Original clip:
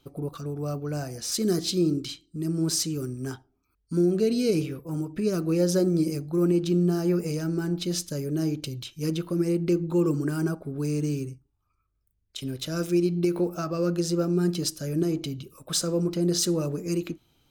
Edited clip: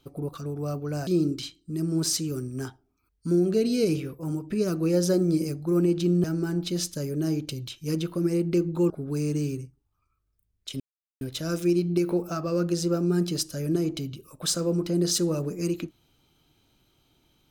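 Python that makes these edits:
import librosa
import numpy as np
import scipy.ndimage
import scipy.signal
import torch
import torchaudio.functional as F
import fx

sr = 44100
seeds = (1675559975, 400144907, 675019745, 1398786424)

y = fx.edit(x, sr, fx.cut(start_s=1.07, length_s=0.66),
    fx.cut(start_s=6.9, length_s=0.49),
    fx.cut(start_s=10.05, length_s=0.53),
    fx.insert_silence(at_s=12.48, length_s=0.41), tone=tone)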